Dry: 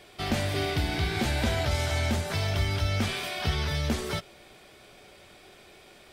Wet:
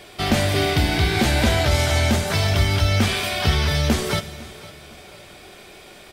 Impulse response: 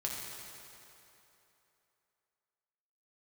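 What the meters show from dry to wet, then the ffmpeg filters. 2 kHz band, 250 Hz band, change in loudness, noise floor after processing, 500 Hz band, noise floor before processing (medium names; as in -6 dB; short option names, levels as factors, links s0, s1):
+8.5 dB, +9.0 dB, +8.5 dB, -44 dBFS, +8.5 dB, -54 dBFS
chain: -filter_complex "[0:a]aecho=1:1:505|1010|1515:0.106|0.0371|0.013,asplit=2[s0][s1];[1:a]atrim=start_sample=2205,asetrate=70560,aresample=44100,highshelf=f=5400:g=10.5[s2];[s1][s2]afir=irnorm=-1:irlink=0,volume=0.266[s3];[s0][s3]amix=inputs=2:normalize=0,volume=2.37"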